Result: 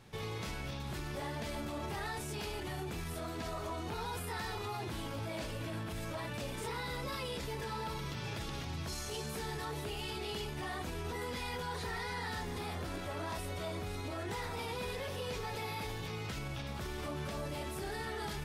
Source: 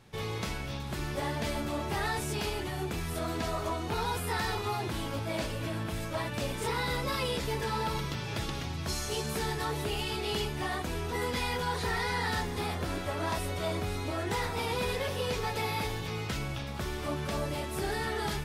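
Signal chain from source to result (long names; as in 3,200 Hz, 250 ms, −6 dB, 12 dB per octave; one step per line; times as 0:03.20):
brickwall limiter −32 dBFS, peak gain reduction 8.5 dB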